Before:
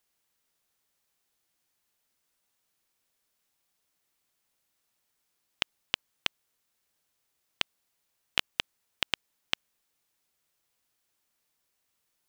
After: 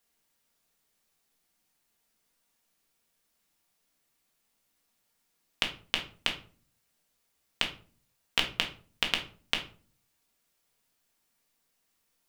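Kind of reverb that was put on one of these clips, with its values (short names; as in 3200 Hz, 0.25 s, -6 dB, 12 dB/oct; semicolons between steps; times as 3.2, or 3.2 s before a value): shoebox room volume 290 m³, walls furnished, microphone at 1.7 m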